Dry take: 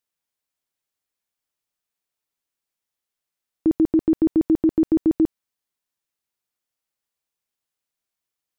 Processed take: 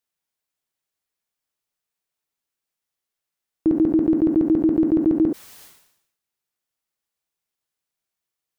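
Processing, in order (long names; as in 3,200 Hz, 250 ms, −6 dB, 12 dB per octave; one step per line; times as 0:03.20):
on a send at −10 dB: convolution reverb, pre-delay 3 ms
on the sum: level that may fall only so fast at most 73 dB per second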